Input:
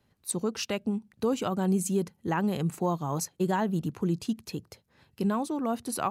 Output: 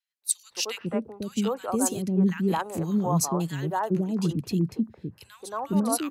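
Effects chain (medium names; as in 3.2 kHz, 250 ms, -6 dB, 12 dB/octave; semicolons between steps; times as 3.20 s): three bands offset in time highs, mids, lows 220/500 ms, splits 430/1700 Hz; three bands expanded up and down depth 40%; trim +4 dB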